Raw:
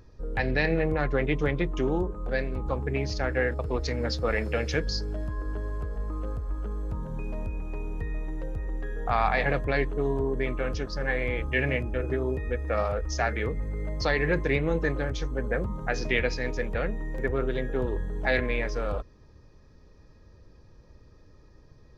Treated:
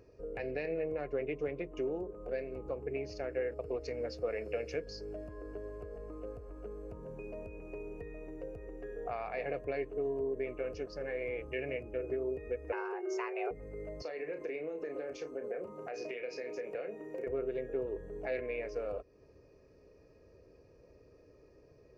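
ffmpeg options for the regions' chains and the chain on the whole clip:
-filter_complex "[0:a]asettb=1/sr,asplit=3[a][b][c];[a]atrim=end=12.724[d];[b]atrim=start=12.72:end=13.51,asetpts=PTS-STARTPTS,afade=t=in:d=0.004:c=qsin,afade=t=out:st=0.786:d=0.004:c=qsin,equalizer=f=1k:t=o:w=0.9:g=12.5,afreqshift=310[e];[c]atrim=start=13.506[f];[d][e]acrossfade=d=0.004:c1=hsin:c2=qsin[g];[g][f]acrossfade=d=0.004:c1=qsin:c2=hsin,asettb=1/sr,asplit=3[h][i][j];[h]atrim=end=14.024[k];[i]atrim=start=14.02:end=17.27,asetpts=PTS-STARTPTS,afade=t=in:d=0.004:c=qsin,afade=t=out:st=3.246:d=0.004:c=qsin,highpass=260,acompressor=threshold=-32dB:ratio=5:attack=3.2:release=140:knee=1:detection=peak,asplit=2[l][m];[m]adelay=33,volume=-8dB[n];[l][n]amix=inputs=2:normalize=0,atrim=end_sample=143325[o];[j]atrim=start=17.266[p];[k][o]acrossfade=d=0.004:c1=hsin:c2=qsin[q];[q][p]acrossfade=d=0.004:c1=qsin:c2=hsin,highpass=f=78:p=1,acompressor=threshold=-41dB:ratio=2,superequalizer=6b=2:7b=3.98:8b=3.16:12b=2:13b=0.447,volume=-8dB"

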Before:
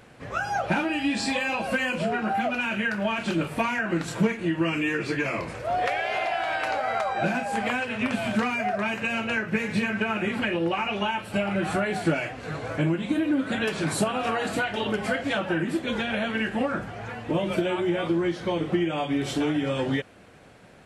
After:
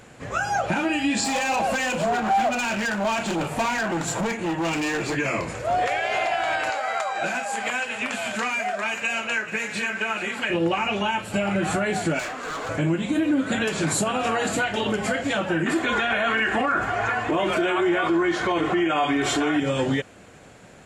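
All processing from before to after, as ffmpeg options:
-filter_complex "[0:a]asettb=1/sr,asplit=3[a][b][c];[a]atrim=end=1.244[d];[b]atrim=start=1.24:end=5.15,asetpts=PTS-STARTPTS,afade=t=in:d=0.004:c=qsin,afade=t=out:st=3.906:d=0.004:c=qsin,asoftclip=type=hard:threshold=-27.5dB,equalizer=f=780:t=o:w=0.8:g=7.5[e];[c]atrim=start=5.146[f];[d][e]acrossfade=d=0.004:c1=hsin:c2=qsin[g];[g][f]acrossfade=d=0.004:c1=qsin:c2=hsin,asettb=1/sr,asplit=3[h][i][j];[h]atrim=end=6.704[k];[i]atrim=start=6.7:end=10.5,asetpts=PTS-STARTPTS,afade=t=in:d=0.004:c=qsin,afade=t=out:st=3.796:d=0.004:c=qsin,highpass=f=860:p=1,aecho=1:1:434:0.2,atrim=end_sample=167580[l];[j]atrim=start=10.496[m];[k][l]acrossfade=d=0.004:c1=hsin:c2=qsin[n];[n][m]acrossfade=d=0.004:c1=qsin:c2=hsin,asettb=1/sr,asplit=3[o][p][q];[o]atrim=end=12.194[r];[p]atrim=start=12.19:end=12.69,asetpts=PTS-STARTPTS,afade=t=in:d=0.004:c=qsin,afade=t=out:st=0.496:d=0.004:c=qsin,highpass=f=210:w=0.5412,highpass=f=210:w=1.3066,equalizer=f=1.2k:w=2:g=12.5,volume=32dB,asoftclip=hard,volume=-32dB[s];[q]atrim=start=12.686[t];[r][s]acrossfade=d=0.004:c1=hsin:c2=qsin[u];[u][t]acrossfade=d=0.004:c1=qsin:c2=hsin,asettb=1/sr,asplit=3[v][w][x];[v]atrim=end=15.664[y];[w]atrim=start=15.66:end=19.6,asetpts=PTS-STARTPTS,afade=t=in:d=0.004:c=qsin,afade=t=out:st=3.936:d=0.004:c=qsin,equalizer=f=1.3k:t=o:w=2.3:g=12.5,aecho=1:1:2.8:0.45,atrim=end_sample=173754[z];[x]atrim=start=19.596[aa];[y][z]acrossfade=d=0.004:c1=hsin:c2=qsin[ab];[ab][aa]acrossfade=d=0.004:c1=qsin:c2=hsin,equalizer=f=7.1k:t=o:w=0.29:g=11,alimiter=limit=-18dB:level=0:latency=1:release=50,volume=3.5dB"

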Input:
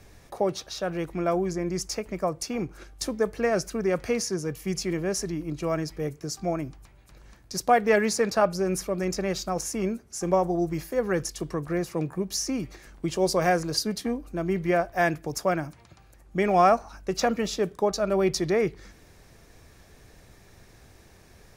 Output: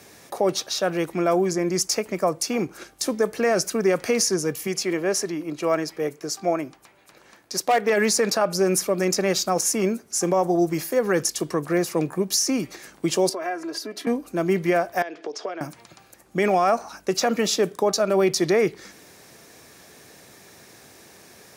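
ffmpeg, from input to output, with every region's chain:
-filter_complex "[0:a]asettb=1/sr,asplit=3[a][b][c];[a]atrim=end=4.674[d];[b]atrim=start=4.67:end=7.9,asetpts=PTS-STARTPTS,afade=t=in:d=0.004:c=qsin,afade=t=out:st=3.226:d=0.004:c=qsin,bass=f=250:g=-8,treble=f=4k:g=-6,asoftclip=type=hard:threshold=-16.5dB[e];[c]atrim=start=7.896[f];[d][e]acrossfade=d=0.004:c1=hsin:c2=qsin[g];[g][f]acrossfade=d=0.004:c1=qsin:c2=hsin,asettb=1/sr,asplit=3[h][i][j];[h]atrim=end=13.294[k];[i]atrim=start=13.29:end=14.07,asetpts=PTS-STARTPTS,afade=t=in:d=0.004:c=qsin,afade=t=out:st=0.776:d=0.004:c=qsin,acrossover=split=230 3000:gain=0.224 1 0.2[l][m][n];[l][m][n]amix=inputs=3:normalize=0,acompressor=threshold=-39dB:ratio=3:attack=3.2:release=140:knee=1:detection=peak,aecho=1:1:3:0.77,atrim=end_sample=34398[o];[j]atrim=start=14.066[p];[k][o]acrossfade=d=0.004:c1=hsin:c2=qsin[q];[q][p]acrossfade=d=0.004:c1=qsin:c2=hsin,asettb=1/sr,asplit=3[r][s][t];[r]atrim=end=15.024[u];[s]atrim=start=15.02:end=15.61,asetpts=PTS-STARTPTS,afade=t=in:d=0.004:c=qsin,afade=t=out:st=0.586:d=0.004:c=qsin,bandreject=f=560:w=17,acompressor=threshold=-34dB:ratio=16:attack=3.2:release=140:knee=1:detection=peak,highpass=f=280:w=0.5412,highpass=f=280:w=1.3066,equalizer=f=440:t=q:w=4:g=7,equalizer=f=640:t=q:w=4:g=4,equalizer=f=3.2k:t=q:w=4:g=6,lowpass=f=5.3k:w=0.5412,lowpass=f=5.3k:w=1.3066[v];[t]atrim=start=15.606[w];[u][v]acrossfade=d=0.004:c1=hsin:c2=qsin[x];[x][w]acrossfade=d=0.004:c1=qsin:c2=hsin,highpass=200,highshelf=f=4.7k:g=6,alimiter=limit=-17.5dB:level=0:latency=1:release=71,volume=6.5dB"

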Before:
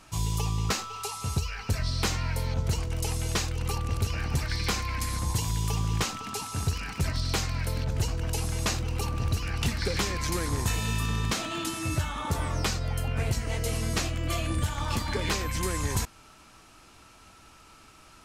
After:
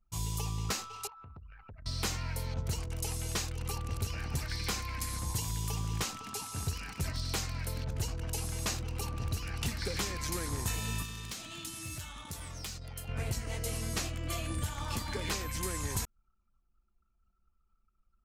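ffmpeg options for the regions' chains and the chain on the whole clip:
-filter_complex "[0:a]asettb=1/sr,asplit=3[a][b][c];[a]atrim=end=1.074[d];[b]atrim=start=1.07:end=1.86,asetpts=PTS-STARTPTS,afade=t=in:d=0.004:c=qsin,afade=t=out:st=0.786:d=0.004:c=qsin,lowpass=2k,equalizer=f=160:t=o:w=2.3:g=-8,acompressor=threshold=-39dB:ratio=5:attack=3.2:release=140:knee=1:detection=peak[e];[c]atrim=start=1.856[f];[d][e]acrossfade=d=0.004:c1=hsin:c2=qsin[g];[g][f]acrossfade=d=0.004:c1=qsin:c2=hsin,asettb=1/sr,asplit=3[h][i][j];[h]atrim=end=11.024[k];[i]atrim=start=11.02:end=13.09,asetpts=PTS-STARTPTS,afade=t=in:d=0.004:c=qsin,afade=t=out:st=2.066:d=0.004:c=qsin,asoftclip=type=hard:threshold=-22.5dB,acrossover=split=190|2200[l][m][n];[l]acompressor=threshold=-36dB:ratio=4[o];[m]acompressor=threshold=-45dB:ratio=4[p];[n]acompressor=threshold=-36dB:ratio=4[q];[o][p][q]amix=inputs=3:normalize=0[r];[j]atrim=start=13.086[s];[k][r]acrossfade=d=0.004:c1=hsin:c2=qsin[t];[t][s]acrossfade=d=0.004:c1=qsin:c2=hsin,highshelf=f=7.2k:g=7.5,anlmdn=0.251,volume=-7dB"

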